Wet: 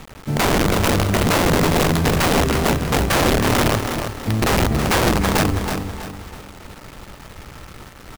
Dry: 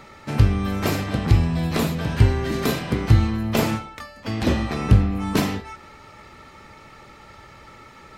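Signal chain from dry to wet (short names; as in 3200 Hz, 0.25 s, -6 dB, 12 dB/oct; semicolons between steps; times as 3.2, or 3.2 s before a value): tilt -3.5 dB/oct; wrapped overs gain 9.5 dB; speakerphone echo 0.3 s, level -7 dB; bit-crush 6-bit; feedback echo 0.324 s, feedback 35%, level -7.5 dB; gain -2.5 dB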